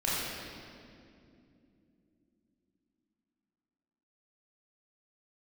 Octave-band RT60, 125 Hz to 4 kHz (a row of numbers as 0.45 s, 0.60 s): 4.0 s, 4.9 s, 3.2 s, 2.1 s, 2.0 s, 1.8 s